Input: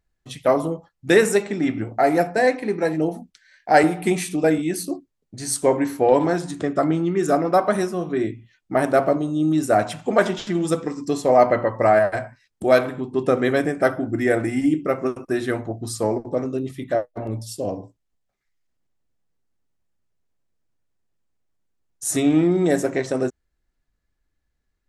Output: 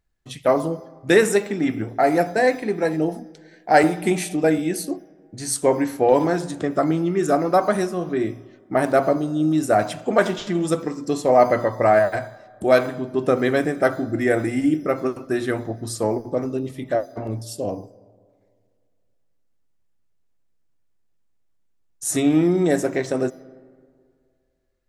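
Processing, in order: on a send at -20.5 dB: careless resampling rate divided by 8×, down filtered, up hold + reverb RT60 2.1 s, pre-delay 40 ms

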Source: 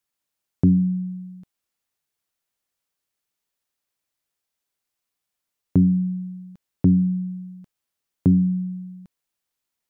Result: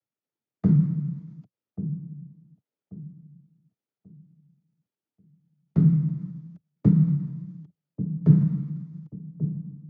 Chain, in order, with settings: median filter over 41 samples; noise vocoder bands 12; formant shift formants -3 st; on a send: dark delay 1.136 s, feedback 32%, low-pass 580 Hz, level -11.5 dB

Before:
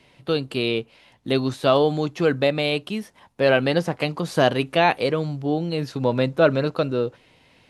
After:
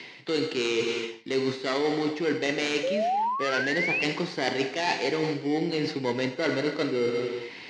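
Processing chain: tracing distortion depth 0.12 ms; non-linear reverb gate 0.46 s falling, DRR 6.5 dB; in parallel at -9 dB: sample-and-hold 17×; on the sum: speaker cabinet 230–6300 Hz, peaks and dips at 390 Hz +4 dB, 590 Hz -9 dB, 1200 Hz -4 dB, 2000 Hz +9 dB, 4600 Hz +6 dB; painted sound rise, 2.83–4.03, 500–2800 Hz -22 dBFS; reverse; compressor 6:1, threshold -33 dBFS, peak gain reduction 19.5 dB; reverse; mismatched tape noise reduction encoder only; gain +8 dB

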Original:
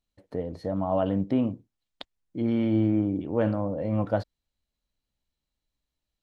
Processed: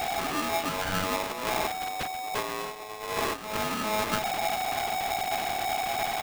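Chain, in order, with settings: delta modulation 16 kbps, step -24 dBFS; comb 2.3 ms, depth 66%; 1.32–3.57 negative-ratio compressor -29 dBFS, ratio -0.5; bell 80 Hz +12.5 dB 0.26 oct; split-band echo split 450 Hz, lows 0.791 s, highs 0.135 s, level -14.5 dB; polarity switched at an audio rate 750 Hz; gain -3.5 dB

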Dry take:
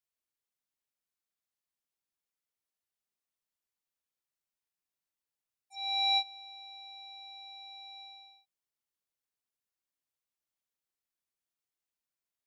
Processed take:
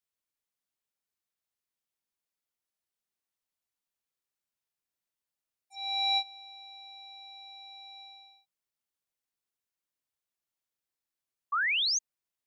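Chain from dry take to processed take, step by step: painted sound rise, 11.52–11.99, 1100–6700 Hz -28 dBFS

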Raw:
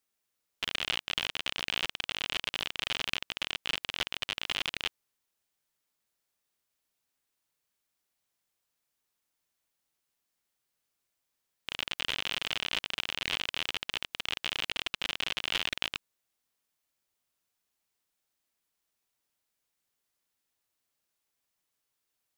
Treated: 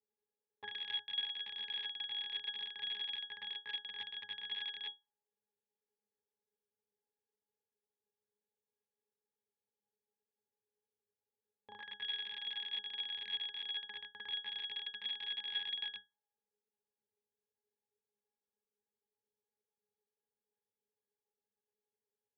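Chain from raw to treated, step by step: auto-wah 460–2800 Hz, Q 2.2, up, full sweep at -32 dBFS; octave resonator G#, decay 0.19 s; gain +16 dB

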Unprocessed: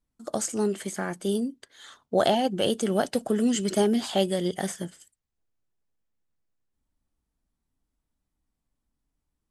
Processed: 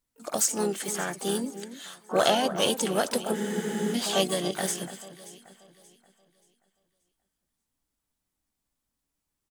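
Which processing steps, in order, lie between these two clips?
harmoniser -3 st -11 dB, +3 st -15 dB, +12 st -14 dB; tilt +2 dB/oct; echo with dull and thin repeats by turns 0.29 s, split 2000 Hz, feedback 56%, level -12 dB; spectral freeze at 3.36, 0.57 s

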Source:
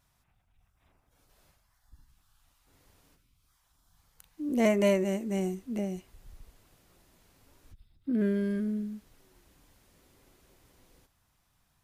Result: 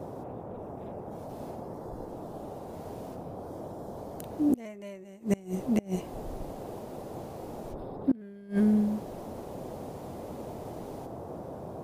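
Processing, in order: band noise 76–740 Hz -49 dBFS; flipped gate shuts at -23 dBFS, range -27 dB; gain +8.5 dB

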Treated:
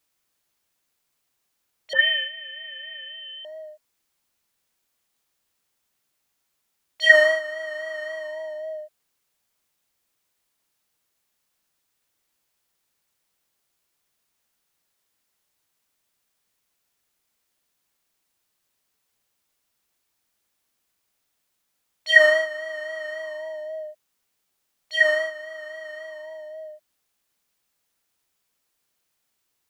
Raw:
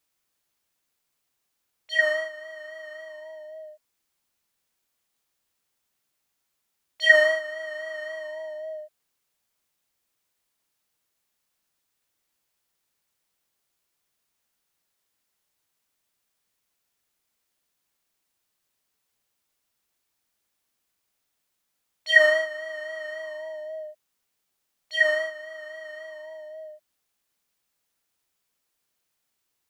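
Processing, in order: 1.93–3.45 inverted band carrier 3700 Hz; gain +2.5 dB

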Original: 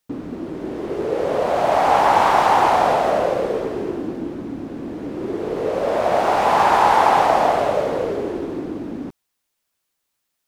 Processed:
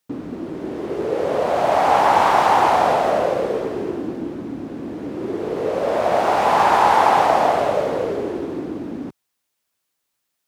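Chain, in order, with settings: HPF 61 Hz

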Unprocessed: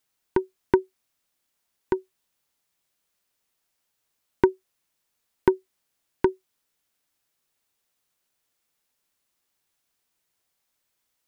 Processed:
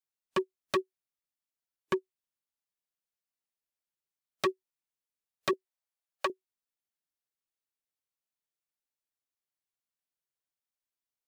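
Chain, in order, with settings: spectral noise reduction 19 dB; wavefolder -20.5 dBFS; 5.53–6.3 resonant low shelf 390 Hz -13.5 dB, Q 1.5

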